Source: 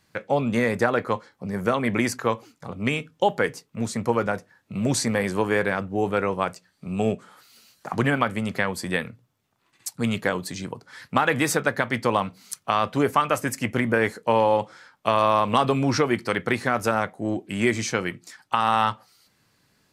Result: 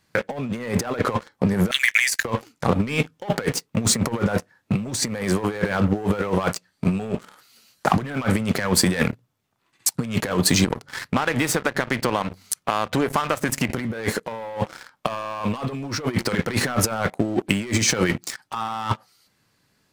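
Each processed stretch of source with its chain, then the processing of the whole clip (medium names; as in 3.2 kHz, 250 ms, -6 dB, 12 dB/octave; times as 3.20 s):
1.71–2.25 s: steep high-pass 1.6 kHz 72 dB/octave + treble shelf 5.5 kHz +7.5 dB
10.64–13.70 s: treble shelf 3.6 kHz -3 dB + de-hum 47.36 Hz, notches 3 + compression, threshold -34 dBFS
whole clip: waveshaping leveller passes 3; compressor with a negative ratio -20 dBFS, ratio -0.5; trim -1 dB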